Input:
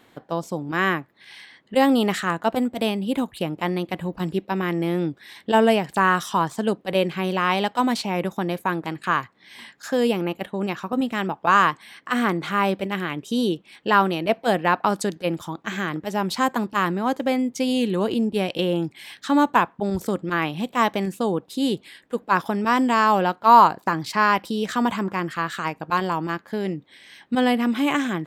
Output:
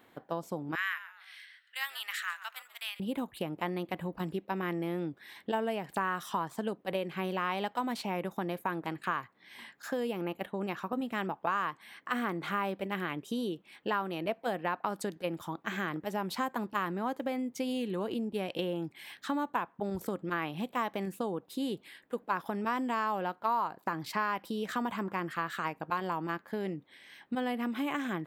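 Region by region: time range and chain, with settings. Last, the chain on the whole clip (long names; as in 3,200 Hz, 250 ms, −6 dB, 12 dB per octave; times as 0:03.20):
0:00.75–0:03.00: high-pass filter 1,500 Hz 24 dB per octave + echo with shifted repeats 138 ms, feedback 33%, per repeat −130 Hz, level −16 dB
whole clip: parametric band 6,400 Hz −11 dB 2.3 octaves; downward compressor 6 to 1, threshold −24 dBFS; spectral tilt +1.5 dB per octave; level −4 dB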